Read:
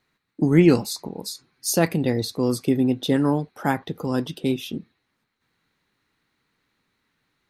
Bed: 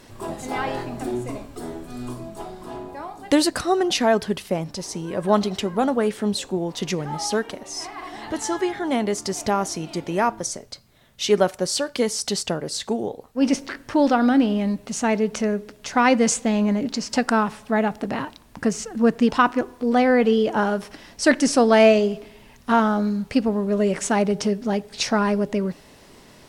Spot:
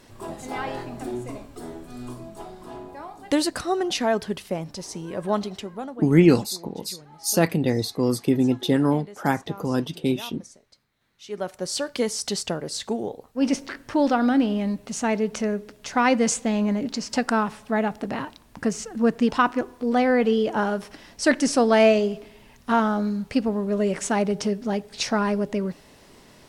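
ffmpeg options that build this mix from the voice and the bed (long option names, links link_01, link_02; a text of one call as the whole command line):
ffmpeg -i stem1.wav -i stem2.wav -filter_complex "[0:a]adelay=5600,volume=0dB[link_01];[1:a]volume=13dB,afade=type=out:start_time=5.16:duration=0.88:silence=0.16788,afade=type=in:start_time=11.27:duration=0.58:silence=0.141254[link_02];[link_01][link_02]amix=inputs=2:normalize=0" out.wav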